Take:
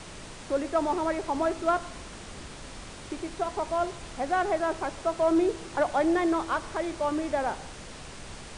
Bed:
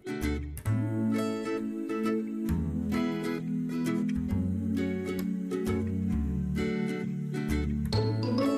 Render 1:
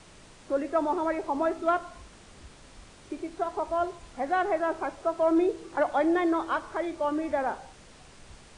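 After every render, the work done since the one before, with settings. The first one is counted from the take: noise print and reduce 9 dB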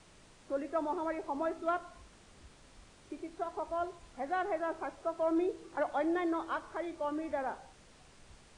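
gain -7.5 dB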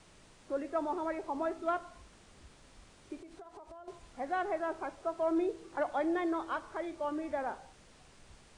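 3.2–3.88 compressor 20:1, threshold -46 dBFS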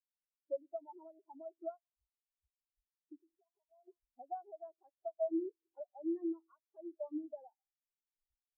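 compressor 20:1, threshold -40 dBFS, peak gain reduction 14 dB; spectral expander 4:1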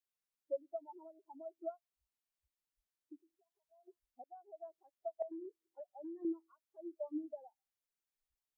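4.24–4.65 fade in; 5.22–6.25 compressor, threshold -44 dBFS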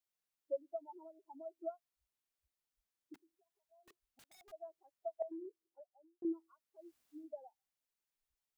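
3.14–4.52 wrapped overs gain 58 dB; 5.34–6.22 studio fade out; 6.82–7.23 room tone, crossfade 0.24 s

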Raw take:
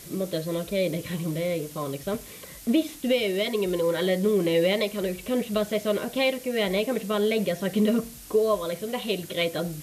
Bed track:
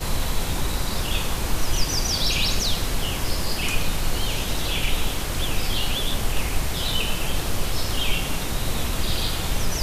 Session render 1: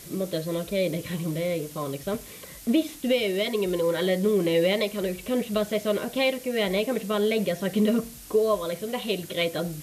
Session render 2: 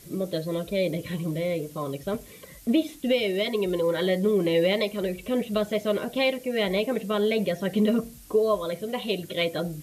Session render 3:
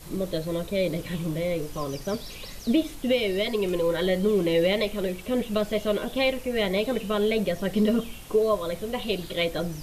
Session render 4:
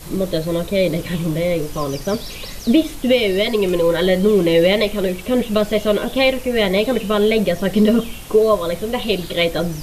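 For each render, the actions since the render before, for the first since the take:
nothing audible
denoiser 7 dB, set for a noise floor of -44 dBFS
add bed track -19 dB
gain +8.5 dB

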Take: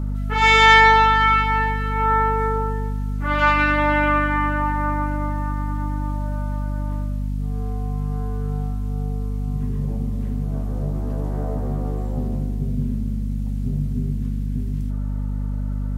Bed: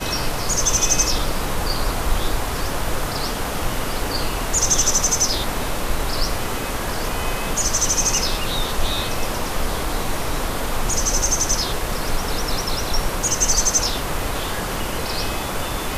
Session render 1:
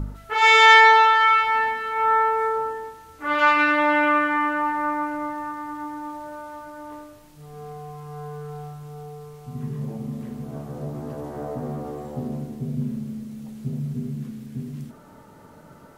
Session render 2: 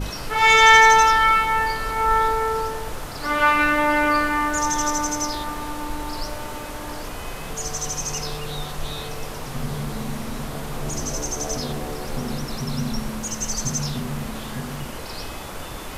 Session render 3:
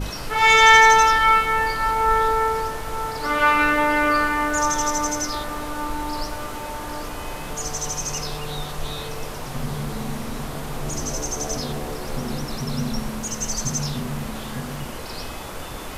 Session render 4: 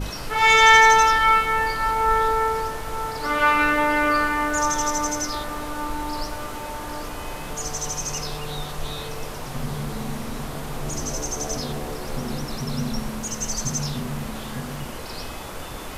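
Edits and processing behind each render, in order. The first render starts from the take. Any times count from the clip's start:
de-hum 50 Hz, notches 5
add bed -9 dB
band-limited delay 0.578 s, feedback 70%, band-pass 630 Hz, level -11 dB
gain -1 dB

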